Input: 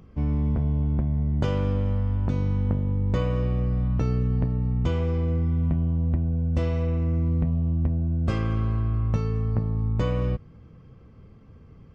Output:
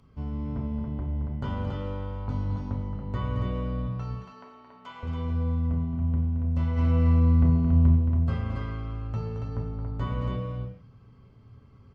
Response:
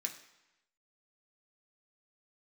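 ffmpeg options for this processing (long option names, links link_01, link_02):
-filter_complex "[0:a]acrossover=split=2700[link_01][link_02];[link_02]acompressor=threshold=-58dB:ratio=4:attack=1:release=60[link_03];[link_01][link_03]amix=inputs=2:normalize=0,asettb=1/sr,asplit=3[link_04][link_05][link_06];[link_04]atrim=end=3.874[link_07];[link_05]atrim=start=3.87:end=5.03,asetpts=PTS-STARTPTS,afade=type=in:duration=0.004:curve=qsin,afade=type=out:start_time=1.156:duration=0.004:curve=qsin,highpass=810[link_08];[link_06]atrim=start=5.026[link_09];[link_07][link_08]acrossfade=duration=0.004:curve1=hsin:curve2=qsin[link_10];[link_10][link_09]acrossfade=duration=0.004:curve1=qsin:curve2=hsin,asplit=3[link_11][link_12][link_13];[link_11]afade=type=out:start_time=6.76:duration=0.02[link_14];[link_12]acontrast=89,afade=type=in:start_time=6.76:duration=0.02,afade=type=out:start_time=7.95:duration=0.02[link_15];[link_13]afade=type=in:start_time=7.95:duration=0.02[link_16];[link_14][link_15][link_16]amix=inputs=3:normalize=0,aecho=1:1:221.6|279.9:0.398|0.562[link_17];[1:a]atrim=start_sample=2205,afade=type=out:start_time=0.15:duration=0.01,atrim=end_sample=7056,asetrate=24696,aresample=44100[link_18];[link_17][link_18]afir=irnorm=-1:irlink=0,volume=-7.5dB"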